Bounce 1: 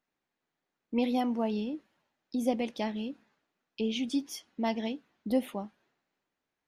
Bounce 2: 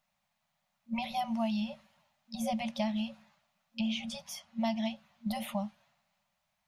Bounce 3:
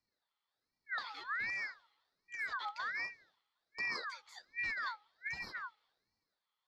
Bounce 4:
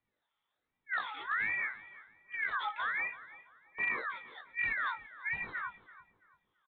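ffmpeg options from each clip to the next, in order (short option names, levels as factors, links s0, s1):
-filter_complex "[0:a]afftfilt=real='re*(1-between(b*sr/4096,230,540))':imag='im*(1-between(b*sr/4096,230,540))':win_size=4096:overlap=0.75,equalizer=f=1600:t=o:w=0.49:g=-6.5,acrossover=split=550|2200[s0][s1][s2];[s0]acompressor=threshold=0.0112:ratio=4[s3];[s1]acompressor=threshold=0.00501:ratio=4[s4];[s2]acompressor=threshold=0.00282:ratio=4[s5];[s3][s4][s5]amix=inputs=3:normalize=0,volume=2.37"
-filter_complex "[0:a]aeval=exprs='clip(val(0),-1,0.015)':c=same,asplit=3[s0][s1][s2];[s0]bandpass=f=270:t=q:w=8,volume=1[s3];[s1]bandpass=f=2290:t=q:w=8,volume=0.501[s4];[s2]bandpass=f=3010:t=q:w=8,volume=0.355[s5];[s3][s4][s5]amix=inputs=3:normalize=0,aeval=exprs='val(0)*sin(2*PI*1600*n/s+1600*0.35/1.3*sin(2*PI*1.3*n/s))':c=same,volume=3.16"
-filter_complex "[0:a]flanger=delay=19:depth=3.4:speed=2.2,aresample=8000,volume=47.3,asoftclip=hard,volume=0.0211,aresample=44100,asplit=2[s0][s1];[s1]adelay=335,lowpass=f=1700:p=1,volume=0.178,asplit=2[s2][s3];[s3]adelay=335,lowpass=f=1700:p=1,volume=0.38,asplit=2[s4][s5];[s5]adelay=335,lowpass=f=1700:p=1,volume=0.38[s6];[s0][s2][s4][s6]amix=inputs=4:normalize=0,volume=2.51"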